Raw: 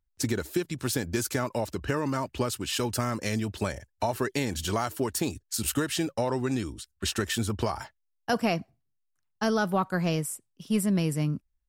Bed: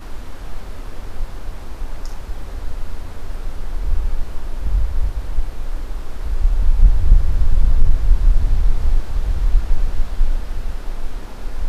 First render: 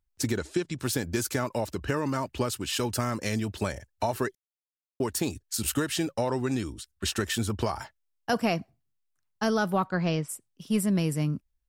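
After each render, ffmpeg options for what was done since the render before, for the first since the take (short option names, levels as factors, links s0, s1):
-filter_complex "[0:a]asettb=1/sr,asplit=3[s0][s1][s2];[s0]atrim=end=0.374[s3];[s1]atrim=start=0.37:end=0.8,asetpts=PTS-STARTPTS,afade=t=in:d=0.004:c=qsin,afade=t=out:st=0.426:d=0.004:c=qsin,lowpass=f=8500:w=0.5412,lowpass=f=8500:w=1.3066[s4];[s2]atrim=start=0.796[s5];[s3][s4]acrossfade=d=0.004:c1=hsin:c2=qsin[s6];[s6][s5]acrossfade=d=0.004:c1=qsin:c2=hsin,asplit=3[s7][s8][s9];[s7]afade=t=out:st=9.86:d=0.02[s10];[s8]lowpass=f=5400:w=0.5412,lowpass=f=5400:w=1.3066,afade=t=in:st=9.86:d=0.02,afade=t=out:st=10.28:d=0.02[s11];[s9]afade=t=in:st=10.28:d=0.02[s12];[s10][s11][s12]amix=inputs=3:normalize=0,asplit=3[s13][s14][s15];[s13]atrim=end=4.35,asetpts=PTS-STARTPTS,afade=t=out:st=4.346:d=0.004:c=hsin[s16];[s14]atrim=start=4.35:end=5,asetpts=PTS-STARTPTS,volume=0[s17];[s15]atrim=start=5,asetpts=PTS-STARTPTS,afade=t=in:d=0.004:c=hsin[s18];[s16][s17][s18]concat=n=3:v=0:a=1"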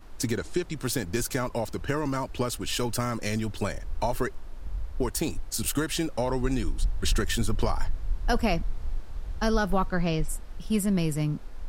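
-filter_complex "[1:a]volume=0.168[s0];[0:a][s0]amix=inputs=2:normalize=0"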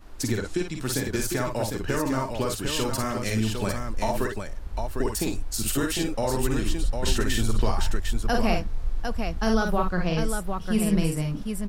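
-af "aecho=1:1:45|55|753:0.447|0.501|0.531"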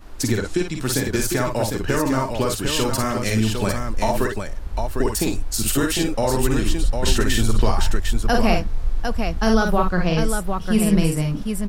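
-af "volume=1.88"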